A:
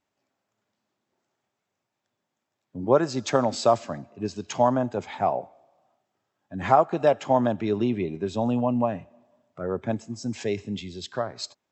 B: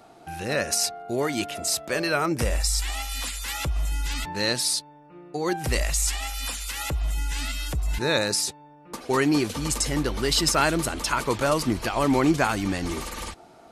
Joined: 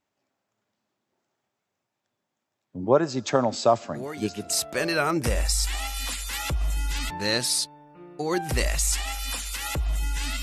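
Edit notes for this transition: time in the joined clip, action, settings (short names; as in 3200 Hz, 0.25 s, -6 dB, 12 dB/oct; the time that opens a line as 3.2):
A
3.81 add B from 0.96 s 0.69 s -9.5 dB
4.5 switch to B from 1.65 s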